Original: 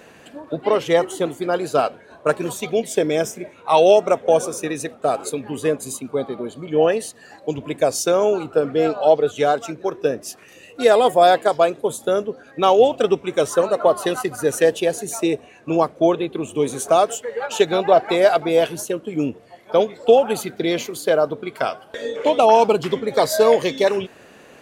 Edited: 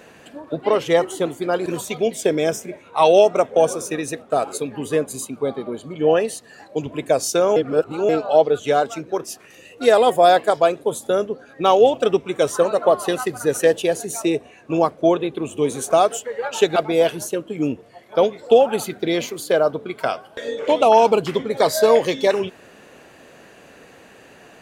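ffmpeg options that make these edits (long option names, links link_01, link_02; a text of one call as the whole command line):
ffmpeg -i in.wav -filter_complex "[0:a]asplit=6[link_01][link_02][link_03][link_04][link_05][link_06];[link_01]atrim=end=1.662[link_07];[link_02]atrim=start=2.378:end=8.282[link_08];[link_03]atrim=start=8.278:end=8.812,asetpts=PTS-STARTPTS,areverse[link_09];[link_04]atrim=start=8.808:end=9.962[link_10];[link_05]atrim=start=10.218:end=17.742[link_11];[link_06]atrim=start=18.328[link_12];[link_07][link_08]acrossfade=duration=0.004:curve1=hsin:curve2=hsin[link_13];[link_13][link_09]acrossfade=duration=0.004:curve1=hsin:curve2=hsin[link_14];[link_14][link_10]acrossfade=duration=0.004:curve1=hsin:curve2=hsin[link_15];[link_15][link_11]acrossfade=duration=0.004:curve1=hsin:curve2=hsin[link_16];[link_16][link_12]acrossfade=duration=0.004:curve1=hsin:curve2=hsin" out.wav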